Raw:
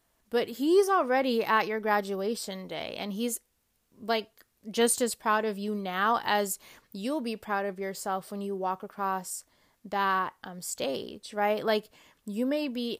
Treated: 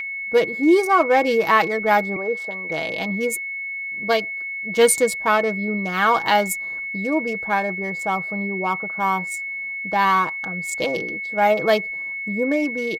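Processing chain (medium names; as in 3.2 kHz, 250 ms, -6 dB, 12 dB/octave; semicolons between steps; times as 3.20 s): local Wiener filter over 15 samples; whistle 2.2 kHz -31 dBFS; 2.16–2.70 s: three-band isolator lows -22 dB, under 270 Hz, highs -13 dB, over 3.2 kHz; comb 6.2 ms, depth 55%; trim +7.5 dB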